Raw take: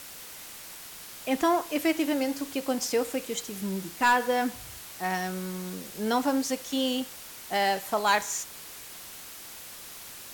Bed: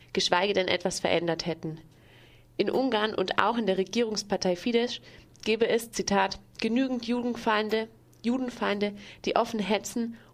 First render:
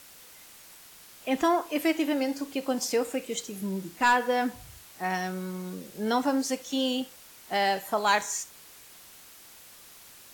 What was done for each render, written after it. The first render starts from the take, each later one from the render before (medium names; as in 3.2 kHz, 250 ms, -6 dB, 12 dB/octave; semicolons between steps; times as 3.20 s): noise print and reduce 7 dB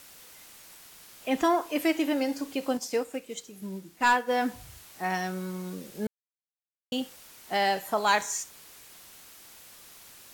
2.77–4.31 s: upward expansion, over -37 dBFS; 6.07–6.92 s: mute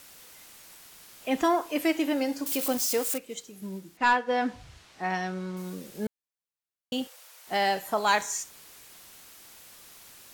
2.46–3.18 s: zero-crossing glitches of -23.5 dBFS; 3.97–5.57 s: low-pass 5 kHz; 7.07–7.47 s: elliptic high-pass 480 Hz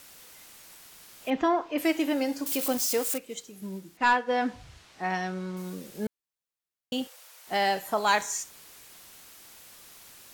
1.30–1.78 s: distance through air 180 m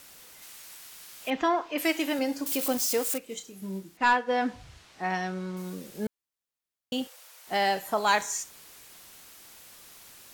0.42–2.19 s: tilt shelf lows -4 dB, about 820 Hz; 3.25–3.83 s: doubling 31 ms -8.5 dB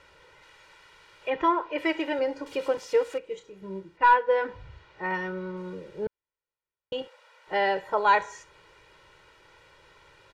low-pass 2.2 kHz 12 dB/octave; comb 2.1 ms, depth 97%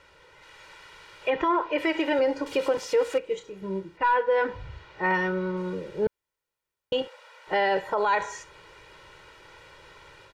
level rider gain up to 6 dB; peak limiter -15.5 dBFS, peak gain reduction 11 dB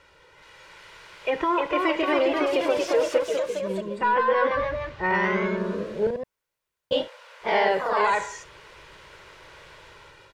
ever faster or slower copies 377 ms, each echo +1 st, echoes 3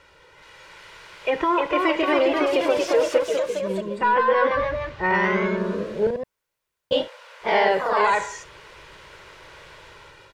trim +2.5 dB